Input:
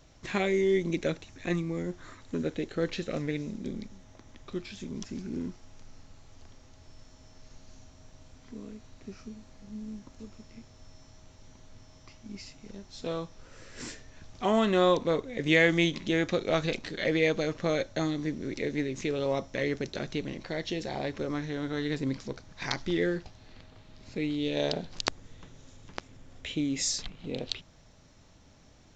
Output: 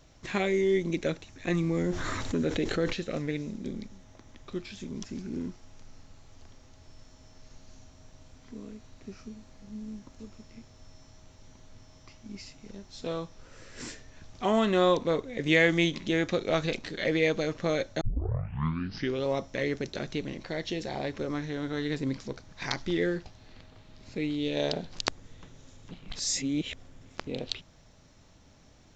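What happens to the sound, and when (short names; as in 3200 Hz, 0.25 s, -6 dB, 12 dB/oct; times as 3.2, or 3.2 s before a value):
1.48–2.93 fast leveller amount 70%
18.01 tape start 1.23 s
25.91–27.27 reverse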